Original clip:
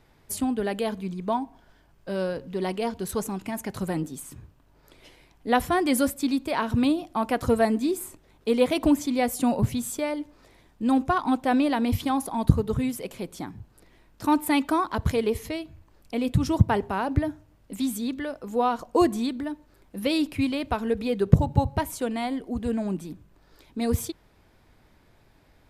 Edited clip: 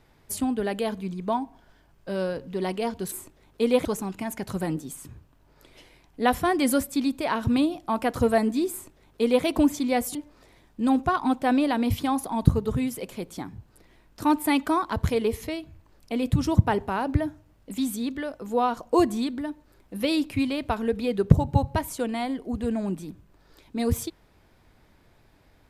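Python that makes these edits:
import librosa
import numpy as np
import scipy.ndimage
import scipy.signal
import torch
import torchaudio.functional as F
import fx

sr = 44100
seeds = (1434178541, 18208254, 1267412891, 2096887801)

y = fx.edit(x, sr, fx.duplicate(start_s=7.99, length_s=0.73, to_s=3.12),
    fx.cut(start_s=9.42, length_s=0.75), tone=tone)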